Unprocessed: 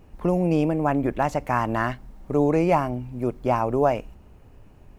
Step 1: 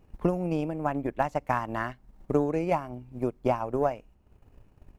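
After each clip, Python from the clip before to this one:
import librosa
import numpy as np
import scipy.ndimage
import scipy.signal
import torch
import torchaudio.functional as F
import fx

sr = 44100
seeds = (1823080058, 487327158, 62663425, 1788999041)

y = fx.transient(x, sr, attack_db=9, sustain_db=-7)
y = y * librosa.db_to_amplitude(-8.5)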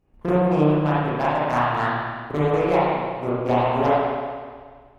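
y = fx.transient(x, sr, attack_db=-4, sustain_db=0)
y = fx.cheby_harmonics(y, sr, harmonics=(7,), levels_db=(-20,), full_scale_db=-14.5)
y = fx.rev_spring(y, sr, rt60_s=1.7, pass_ms=(33, 53), chirp_ms=60, drr_db=-9.5)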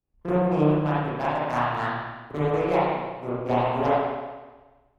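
y = fx.band_widen(x, sr, depth_pct=40)
y = y * librosa.db_to_amplitude(-3.5)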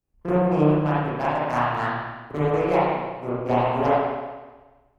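y = fx.peak_eq(x, sr, hz=3600.0, db=-5.5, octaves=0.25)
y = y * librosa.db_to_amplitude(2.0)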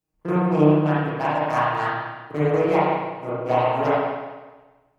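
y = fx.highpass(x, sr, hz=150.0, slope=6)
y = y + 0.71 * np.pad(y, (int(6.4 * sr / 1000.0), 0))[:len(y)]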